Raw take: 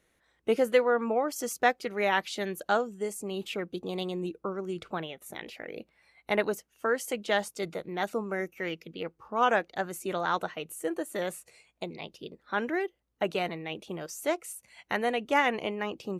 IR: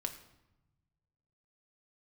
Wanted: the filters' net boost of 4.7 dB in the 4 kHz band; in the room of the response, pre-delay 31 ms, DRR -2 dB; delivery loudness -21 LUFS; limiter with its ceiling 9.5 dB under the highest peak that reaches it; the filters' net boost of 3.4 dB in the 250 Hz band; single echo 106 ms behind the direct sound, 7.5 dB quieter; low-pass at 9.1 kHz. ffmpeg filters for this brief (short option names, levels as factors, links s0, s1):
-filter_complex "[0:a]lowpass=9100,equalizer=f=250:t=o:g=4.5,equalizer=f=4000:t=o:g=6.5,alimiter=limit=0.126:level=0:latency=1,aecho=1:1:106:0.422,asplit=2[s0][s1];[1:a]atrim=start_sample=2205,adelay=31[s2];[s1][s2]afir=irnorm=-1:irlink=0,volume=1.26[s3];[s0][s3]amix=inputs=2:normalize=0,volume=2"